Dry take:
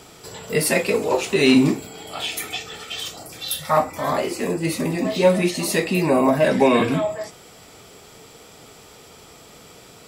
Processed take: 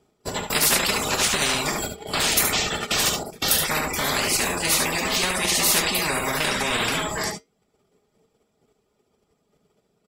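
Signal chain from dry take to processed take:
reverb reduction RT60 0.6 s
noise gate −36 dBFS, range −43 dB
low-shelf EQ 180 Hz −5 dB
comb filter 4.9 ms, depth 36%
in parallel at −1 dB: output level in coarse steps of 18 dB
on the sum: tilt shelving filter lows +7.5 dB, about 750 Hz
downward compressor, threshold −10 dBFS, peak gain reduction 7 dB
flanger 0.23 Hz, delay 2.5 ms, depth 4.9 ms, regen −84%
on a send: single-tap delay 72 ms −8.5 dB
on the sum: every bin compressed towards the loudest bin 10 to 1

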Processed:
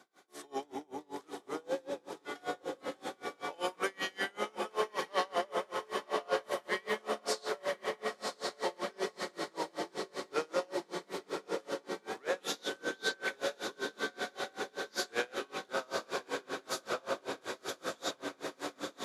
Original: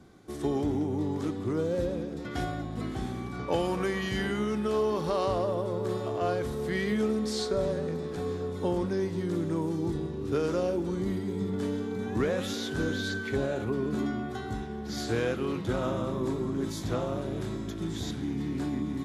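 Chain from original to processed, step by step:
high-pass filter 670 Hz 12 dB per octave
feedback delay with all-pass diffusion 1,036 ms, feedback 72%, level −4 dB
tremolo with a sine in dB 5.2 Hz, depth 31 dB
level +4.5 dB

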